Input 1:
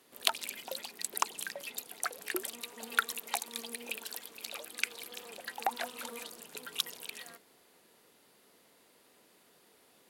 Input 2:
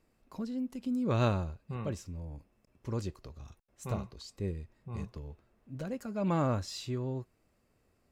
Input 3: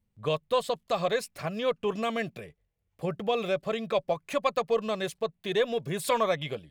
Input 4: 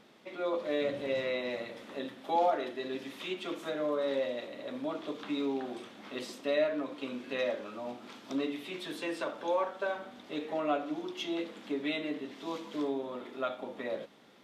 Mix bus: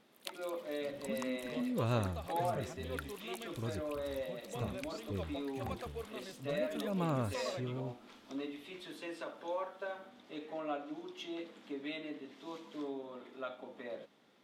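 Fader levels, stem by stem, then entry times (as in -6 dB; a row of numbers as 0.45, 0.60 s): -16.5, -5.0, -18.5, -8.0 dB; 0.00, 0.70, 1.25, 0.00 s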